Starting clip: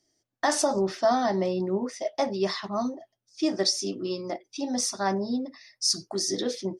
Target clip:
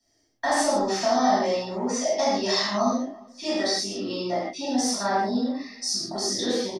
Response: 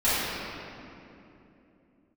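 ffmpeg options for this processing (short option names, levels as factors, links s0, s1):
-filter_complex "[0:a]acrossover=split=200|550[s0][s1][s2];[s0]acompressor=threshold=0.00398:ratio=4[s3];[s1]acompressor=threshold=0.0158:ratio=4[s4];[s2]acompressor=threshold=0.0355:ratio=4[s5];[s3][s4][s5]amix=inputs=3:normalize=0,asettb=1/sr,asplit=3[s6][s7][s8];[s6]atrim=end=0.834[s9];[s7]atrim=start=0.83:end=2.96,asetpts=PTS-STARTPTS,afade=t=in:d=0.004:c=qsin,afade=t=out:st=2.126:d=0.004:c=qsin,equalizer=f=6600:w=1.8:g=11.5[s10];[s8]atrim=start=2.956[s11];[s9][s10]acrossfade=d=0.004:c1=hsin:c2=qsin[s12];[s12][s11]acrossfade=d=0.004:c1=qsin:c2=hsin,asplit=2[s13][s14];[s14]adelay=349,lowpass=f=1700:p=1,volume=0.0631,asplit=2[s15][s16];[s16]adelay=349,lowpass=f=1700:p=1,volume=0.34[s17];[s13][s15][s17]amix=inputs=3:normalize=0[s18];[1:a]atrim=start_sample=2205,afade=t=out:st=0.22:d=0.01,atrim=end_sample=10143[s19];[s18][s19]afir=irnorm=-1:irlink=0,volume=0.473"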